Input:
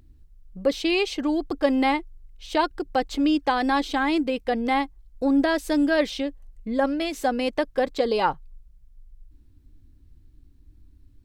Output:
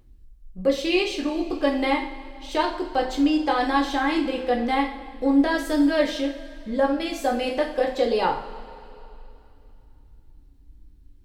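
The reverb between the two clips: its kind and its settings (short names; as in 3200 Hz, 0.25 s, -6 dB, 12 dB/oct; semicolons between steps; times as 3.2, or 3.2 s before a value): two-slope reverb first 0.46 s, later 2.9 s, from -18 dB, DRR -0.5 dB; gain -3 dB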